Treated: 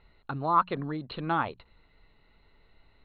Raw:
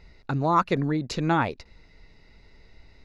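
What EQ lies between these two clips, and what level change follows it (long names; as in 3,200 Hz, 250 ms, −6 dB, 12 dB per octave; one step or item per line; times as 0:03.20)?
Chebyshev low-pass with heavy ripple 4,300 Hz, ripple 9 dB
mains-hum notches 60/120/180 Hz
notch filter 940 Hz, Q 23
0.0 dB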